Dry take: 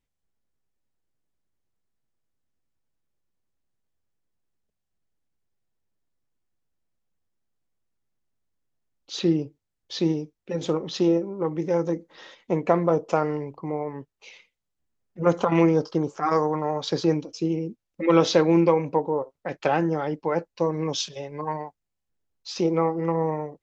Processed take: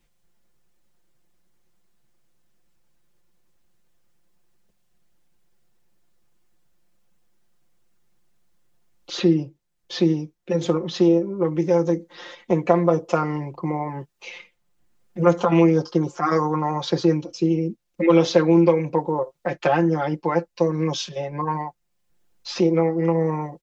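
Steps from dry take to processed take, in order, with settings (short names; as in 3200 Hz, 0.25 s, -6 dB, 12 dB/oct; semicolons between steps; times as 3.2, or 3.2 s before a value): comb 5.7 ms, depth 84%; three-band squash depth 40%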